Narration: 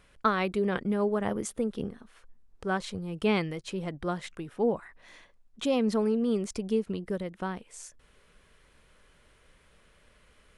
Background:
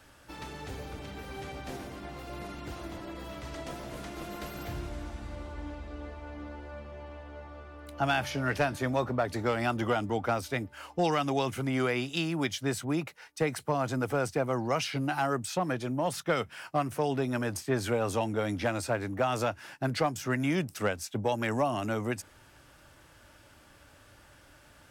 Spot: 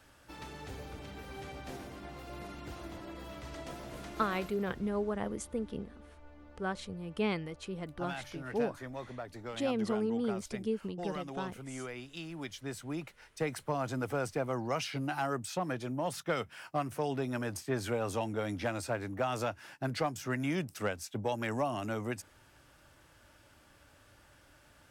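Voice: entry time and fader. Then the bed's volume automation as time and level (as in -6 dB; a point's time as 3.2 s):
3.95 s, -6.0 dB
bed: 4.37 s -4 dB
4.58 s -13.5 dB
12.07 s -13.5 dB
13.53 s -4.5 dB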